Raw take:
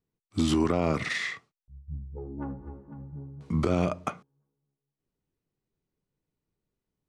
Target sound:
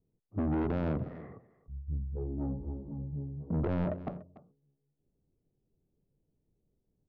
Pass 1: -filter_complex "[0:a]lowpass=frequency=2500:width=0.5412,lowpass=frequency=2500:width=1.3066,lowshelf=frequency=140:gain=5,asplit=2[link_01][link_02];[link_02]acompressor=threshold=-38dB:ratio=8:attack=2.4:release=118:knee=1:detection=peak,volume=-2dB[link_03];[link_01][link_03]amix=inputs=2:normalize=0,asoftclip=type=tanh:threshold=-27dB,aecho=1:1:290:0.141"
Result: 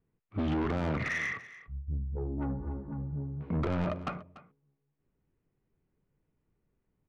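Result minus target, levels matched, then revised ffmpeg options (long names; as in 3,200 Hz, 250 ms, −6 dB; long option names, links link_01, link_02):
2,000 Hz band +14.5 dB; downward compressor: peak gain reduction −10 dB
-filter_complex "[0:a]lowpass=frequency=700:width=0.5412,lowpass=frequency=700:width=1.3066,lowshelf=frequency=140:gain=5,asplit=2[link_01][link_02];[link_02]acompressor=threshold=-49dB:ratio=8:attack=2.4:release=118:knee=1:detection=peak,volume=-2dB[link_03];[link_01][link_03]amix=inputs=2:normalize=0,asoftclip=type=tanh:threshold=-27dB,aecho=1:1:290:0.141"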